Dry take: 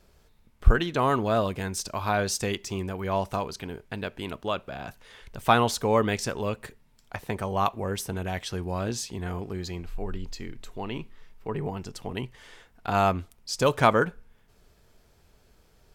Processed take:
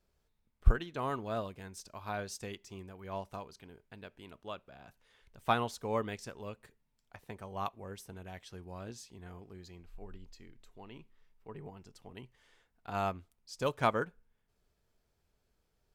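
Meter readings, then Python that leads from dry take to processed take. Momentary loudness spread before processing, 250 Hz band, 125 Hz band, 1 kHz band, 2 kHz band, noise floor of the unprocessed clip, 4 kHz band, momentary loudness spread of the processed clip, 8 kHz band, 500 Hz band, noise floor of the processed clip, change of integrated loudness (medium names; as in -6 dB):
16 LU, -13.0 dB, -11.0 dB, -11.0 dB, -11.5 dB, -61 dBFS, -13.5 dB, 22 LU, -16.0 dB, -11.5 dB, -78 dBFS, -10.0 dB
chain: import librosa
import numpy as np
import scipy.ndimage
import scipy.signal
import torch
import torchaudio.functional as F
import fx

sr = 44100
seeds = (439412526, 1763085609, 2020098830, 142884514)

y = fx.upward_expand(x, sr, threshold_db=-33.0, expansion=1.5)
y = F.gain(torch.from_numpy(y), -5.5).numpy()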